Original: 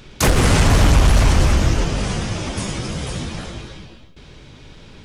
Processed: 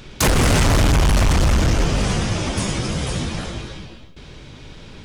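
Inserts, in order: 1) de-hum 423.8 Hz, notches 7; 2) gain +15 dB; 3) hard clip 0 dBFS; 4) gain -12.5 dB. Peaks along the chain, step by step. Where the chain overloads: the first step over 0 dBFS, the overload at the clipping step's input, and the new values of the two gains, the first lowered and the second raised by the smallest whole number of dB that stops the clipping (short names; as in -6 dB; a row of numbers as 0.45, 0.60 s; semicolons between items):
-6.0, +9.0, 0.0, -12.5 dBFS; step 2, 9.0 dB; step 2 +6 dB, step 4 -3.5 dB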